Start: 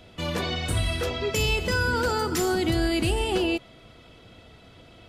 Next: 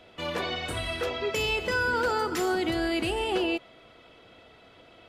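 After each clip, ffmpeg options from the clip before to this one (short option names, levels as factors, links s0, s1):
-af "bass=f=250:g=-12,treble=f=4000:g=-8"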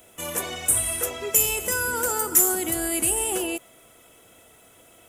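-af "aexciter=amount=15.7:drive=8.6:freq=6900,volume=0.841"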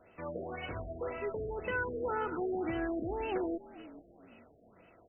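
-filter_complex "[0:a]asplit=4[s0][s1][s2][s3];[s1]adelay=436,afreqshift=-50,volume=0.141[s4];[s2]adelay=872,afreqshift=-100,volume=0.0495[s5];[s3]adelay=1308,afreqshift=-150,volume=0.0174[s6];[s0][s4][s5][s6]amix=inputs=4:normalize=0,afftfilt=real='re*lt(b*sr/1024,690*pow(3100/690,0.5+0.5*sin(2*PI*1.9*pts/sr)))':imag='im*lt(b*sr/1024,690*pow(3100/690,0.5+0.5*sin(2*PI*1.9*pts/sr)))':win_size=1024:overlap=0.75,volume=0.562"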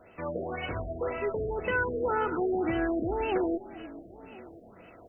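-af "areverse,acompressor=mode=upward:threshold=0.00251:ratio=2.5,areverse,aecho=1:1:1030:0.0841,volume=2"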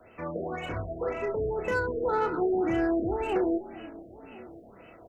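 -filter_complex "[0:a]asplit=2[s0][s1];[s1]adelay=30,volume=0.447[s2];[s0][s2]amix=inputs=2:normalize=0,acrossover=split=140|490|1400[s3][s4][s5][s6];[s6]asoftclip=type=tanh:threshold=0.0141[s7];[s3][s4][s5][s7]amix=inputs=4:normalize=0"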